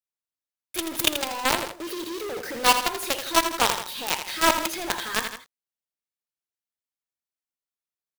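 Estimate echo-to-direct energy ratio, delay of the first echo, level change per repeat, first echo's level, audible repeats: −8.0 dB, 82 ms, −5.5 dB, −9.0 dB, 2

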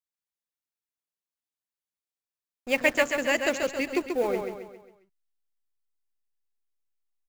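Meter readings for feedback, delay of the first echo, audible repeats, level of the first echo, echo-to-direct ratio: 45%, 135 ms, 5, −5.5 dB, −4.5 dB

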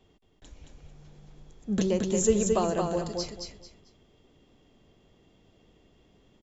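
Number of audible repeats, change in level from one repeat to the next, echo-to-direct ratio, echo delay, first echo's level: 3, −12.0 dB, −3.5 dB, 222 ms, −4.0 dB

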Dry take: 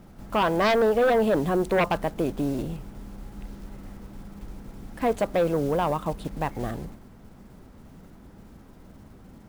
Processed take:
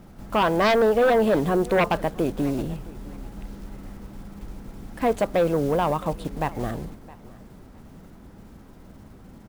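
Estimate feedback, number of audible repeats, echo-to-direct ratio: 22%, 2, −21.0 dB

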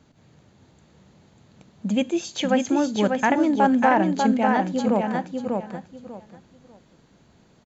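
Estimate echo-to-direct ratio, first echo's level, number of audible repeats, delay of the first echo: −4.0 dB, −4.0 dB, 3, 594 ms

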